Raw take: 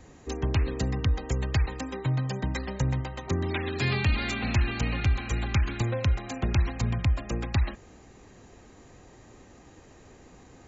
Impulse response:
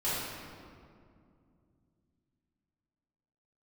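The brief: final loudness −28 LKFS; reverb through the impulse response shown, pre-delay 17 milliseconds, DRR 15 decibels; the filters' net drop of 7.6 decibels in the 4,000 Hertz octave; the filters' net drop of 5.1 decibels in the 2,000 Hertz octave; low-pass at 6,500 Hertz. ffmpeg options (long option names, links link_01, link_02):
-filter_complex "[0:a]lowpass=6500,equalizer=frequency=2000:width_type=o:gain=-4,equalizer=frequency=4000:width_type=o:gain=-8,asplit=2[link_01][link_02];[1:a]atrim=start_sample=2205,adelay=17[link_03];[link_02][link_03]afir=irnorm=-1:irlink=0,volume=-23.5dB[link_04];[link_01][link_04]amix=inputs=2:normalize=0,volume=1dB"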